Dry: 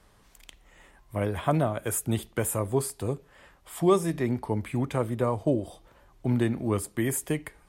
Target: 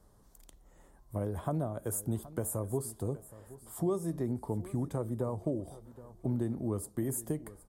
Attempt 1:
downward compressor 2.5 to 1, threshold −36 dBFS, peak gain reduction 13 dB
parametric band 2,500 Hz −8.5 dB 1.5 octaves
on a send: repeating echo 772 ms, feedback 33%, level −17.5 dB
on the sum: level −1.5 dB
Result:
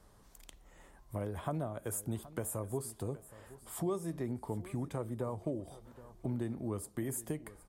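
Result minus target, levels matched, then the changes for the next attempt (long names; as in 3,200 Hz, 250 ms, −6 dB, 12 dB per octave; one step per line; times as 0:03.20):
2,000 Hz band +6.5 dB; downward compressor: peak gain reduction +4.5 dB
change: downward compressor 2.5 to 1, threshold −28.5 dBFS, peak gain reduction 8.5 dB
change: parametric band 2,500 Hz −20 dB 1.5 octaves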